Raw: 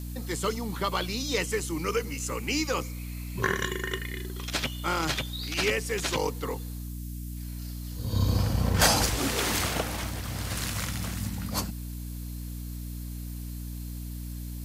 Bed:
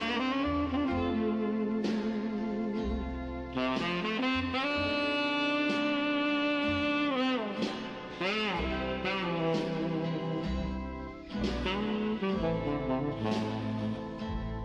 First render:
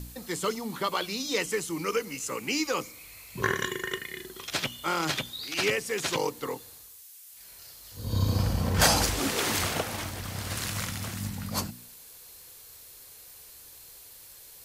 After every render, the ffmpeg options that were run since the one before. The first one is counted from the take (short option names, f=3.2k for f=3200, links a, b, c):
-af "bandreject=f=60:t=h:w=4,bandreject=f=120:t=h:w=4,bandreject=f=180:t=h:w=4,bandreject=f=240:t=h:w=4,bandreject=f=300:t=h:w=4"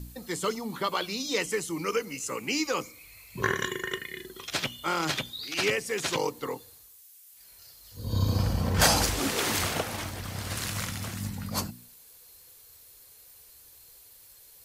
-af "afftdn=nr=6:nf=-50"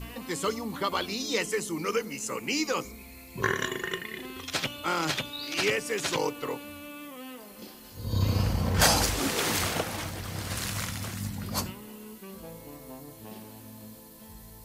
-filter_complex "[1:a]volume=-13.5dB[a];[0:a][a]amix=inputs=2:normalize=0"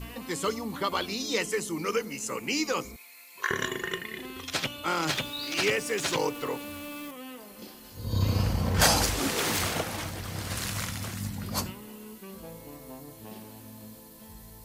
-filter_complex "[0:a]asettb=1/sr,asplit=3[a][b][c];[a]atrim=end=2.964[d];[b]atrim=start=2.96:end=3.51,asetpts=PTS-STARTPTS,afade=t=in:d=0.004:c=qsin,afade=t=out:st=0.546:d=0.004:c=qsin,highpass=1.1k[e];[c]atrim=start=3.506[f];[d][e]acrossfade=d=0.004:c1=hsin:c2=qsin[g];[g][f]acrossfade=d=0.004:c1=qsin:c2=hsin,asettb=1/sr,asplit=3[h][i][j];[h]atrim=end=5.074[k];[i]atrim=start=5.07:end=7.11,asetpts=PTS-STARTPTS,afade=t=in:d=0.004:c=qsin,afade=t=out:st=2.036:d=0.004:c=qsin,aeval=exprs='val(0)+0.5*0.00794*sgn(val(0))':c=same[l];[j]atrim=start=7.106[m];[k][l]acrossfade=d=0.004:c1=hsin:c2=qsin[n];[n][m]acrossfade=d=0.004:c1=qsin:c2=hsin,asettb=1/sr,asplit=3[o][p][q];[o]atrim=end=9.314[r];[p]atrim=start=9.31:end=10.77,asetpts=PTS-STARTPTS,afade=t=in:d=0.004:c=qsin,afade=t=out:st=1.456:d=0.004:c=qsin,aeval=exprs='0.1*(abs(mod(val(0)/0.1+3,4)-2)-1)':c=same[s];[q]atrim=start=10.766[t];[r][s]acrossfade=d=0.004:c1=hsin:c2=qsin[u];[u][t]acrossfade=d=0.004:c1=qsin:c2=hsin"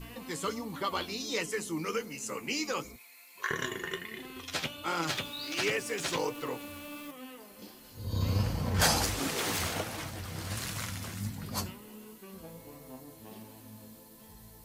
-af "flanger=delay=5.9:depth=7.4:regen=52:speed=1.4:shape=triangular"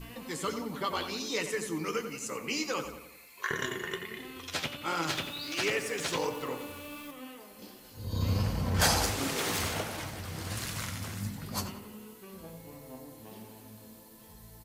-filter_complex "[0:a]asplit=2[a][b];[b]adelay=90,lowpass=f=3.7k:p=1,volume=-9dB,asplit=2[c][d];[d]adelay=90,lowpass=f=3.7k:p=1,volume=0.53,asplit=2[e][f];[f]adelay=90,lowpass=f=3.7k:p=1,volume=0.53,asplit=2[g][h];[h]adelay=90,lowpass=f=3.7k:p=1,volume=0.53,asplit=2[i][j];[j]adelay=90,lowpass=f=3.7k:p=1,volume=0.53,asplit=2[k][l];[l]adelay=90,lowpass=f=3.7k:p=1,volume=0.53[m];[a][c][e][g][i][k][m]amix=inputs=7:normalize=0"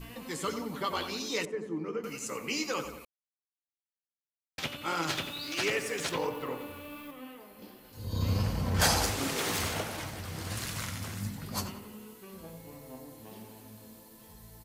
-filter_complex "[0:a]asettb=1/sr,asplit=3[a][b][c];[a]atrim=end=1.454[d];[b]atrim=start=1.45:end=2.04,asetpts=PTS-STARTPTS,afade=t=in:d=0.004:c=qsin,afade=t=out:st=0.586:d=0.004:c=qsin,bandpass=f=310:t=q:w=0.62[e];[c]atrim=start=2.036[f];[d][e]acrossfade=d=0.004:c1=hsin:c2=qsin[g];[g][f]acrossfade=d=0.004:c1=qsin:c2=hsin,asettb=1/sr,asplit=3[h][i][j];[h]atrim=end=6.094[k];[i]atrim=start=6.09:end=7.93,asetpts=PTS-STARTPTS,afade=t=in:d=0.004:c=qsin,afade=t=out:st=1.836:d=0.004:c=qsin,equalizer=f=6.7k:w=0.82:g=-10[l];[j]atrim=start=7.926[m];[k][l]acrossfade=d=0.004:c1=hsin:c2=qsin[n];[n][m]acrossfade=d=0.004:c1=qsin:c2=hsin,asplit=3[o][p][q];[o]atrim=end=3.05,asetpts=PTS-STARTPTS,afade=t=out:st=3.046:d=0.004:c=hsin[r];[p]atrim=start=3.05:end=4.58,asetpts=PTS-STARTPTS,volume=0[s];[q]atrim=start=4.58,asetpts=PTS-STARTPTS,afade=t=in:d=0.004:c=hsin[t];[r][s][t]concat=n=3:v=0:a=1"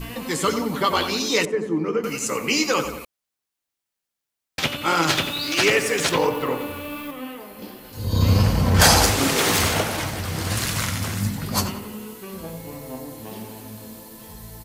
-af "volume=12dB,alimiter=limit=-3dB:level=0:latency=1"